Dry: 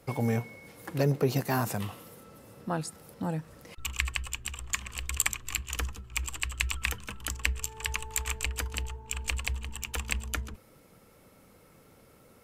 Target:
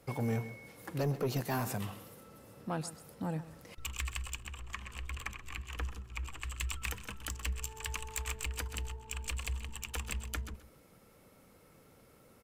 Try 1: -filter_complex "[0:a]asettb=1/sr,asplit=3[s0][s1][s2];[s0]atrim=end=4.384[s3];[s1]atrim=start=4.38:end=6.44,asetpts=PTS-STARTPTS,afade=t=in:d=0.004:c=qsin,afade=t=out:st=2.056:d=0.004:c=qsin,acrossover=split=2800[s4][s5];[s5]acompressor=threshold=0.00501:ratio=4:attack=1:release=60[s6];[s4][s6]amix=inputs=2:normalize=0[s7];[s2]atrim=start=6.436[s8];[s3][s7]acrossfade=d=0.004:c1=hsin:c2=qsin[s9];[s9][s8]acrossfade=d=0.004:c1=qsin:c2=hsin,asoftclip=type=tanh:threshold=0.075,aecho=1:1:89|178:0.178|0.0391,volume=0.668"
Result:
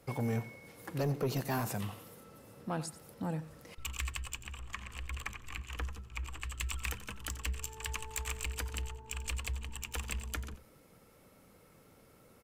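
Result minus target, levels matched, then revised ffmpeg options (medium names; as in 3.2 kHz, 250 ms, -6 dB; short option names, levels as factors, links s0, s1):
echo 41 ms early
-filter_complex "[0:a]asettb=1/sr,asplit=3[s0][s1][s2];[s0]atrim=end=4.384[s3];[s1]atrim=start=4.38:end=6.44,asetpts=PTS-STARTPTS,afade=t=in:d=0.004:c=qsin,afade=t=out:st=2.056:d=0.004:c=qsin,acrossover=split=2800[s4][s5];[s5]acompressor=threshold=0.00501:ratio=4:attack=1:release=60[s6];[s4][s6]amix=inputs=2:normalize=0[s7];[s2]atrim=start=6.436[s8];[s3][s7]acrossfade=d=0.004:c1=hsin:c2=qsin[s9];[s9][s8]acrossfade=d=0.004:c1=qsin:c2=hsin,asoftclip=type=tanh:threshold=0.075,aecho=1:1:130|260:0.178|0.0391,volume=0.668"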